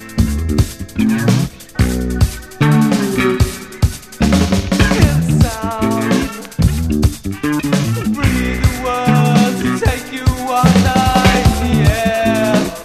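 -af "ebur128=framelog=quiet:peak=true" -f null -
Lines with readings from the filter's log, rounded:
Integrated loudness:
  I:         -14.8 LUFS
  Threshold: -24.7 LUFS
Loudness range:
  LRA:         2.9 LU
  Threshold: -34.8 LUFS
  LRA low:   -16.1 LUFS
  LRA high:  -13.3 LUFS
True peak:
  Peak:       -1.1 dBFS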